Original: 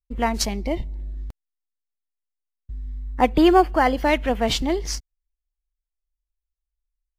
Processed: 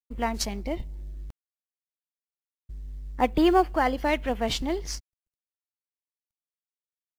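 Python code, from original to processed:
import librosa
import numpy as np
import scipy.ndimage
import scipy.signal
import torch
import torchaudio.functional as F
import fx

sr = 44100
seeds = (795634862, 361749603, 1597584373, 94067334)

y = fx.law_mismatch(x, sr, coded='A')
y = y * librosa.db_to_amplitude(-5.0)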